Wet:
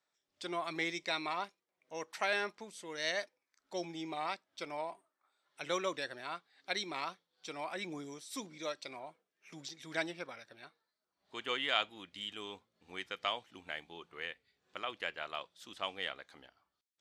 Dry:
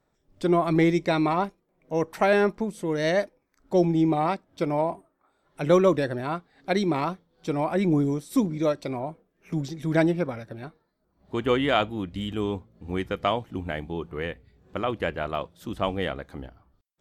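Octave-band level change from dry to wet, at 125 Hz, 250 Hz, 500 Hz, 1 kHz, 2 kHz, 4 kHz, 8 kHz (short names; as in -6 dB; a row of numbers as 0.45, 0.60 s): -27.5, -22.0, -17.0, -12.0, -6.0, -2.0, -3.0 dB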